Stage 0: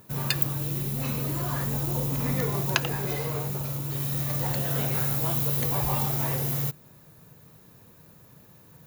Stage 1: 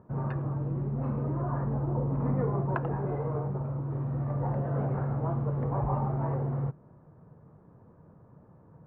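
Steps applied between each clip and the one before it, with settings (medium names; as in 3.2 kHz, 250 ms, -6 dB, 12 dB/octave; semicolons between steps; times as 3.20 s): low-pass 1.2 kHz 24 dB/octave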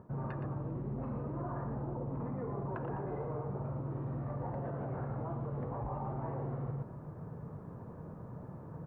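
peak limiter -28 dBFS, peak gain reduction 11 dB; delay 118 ms -7.5 dB; reverse; compression 6:1, threshold -44 dBFS, peak gain reduction 11.5 dB; reverse; trim +8 dB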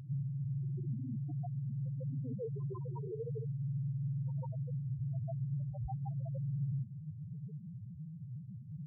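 treble shelf 2.1 kHz +11.5 dB; loudest bins only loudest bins 1; pre-echo 148 ms -14 dB; trim +8.5 dB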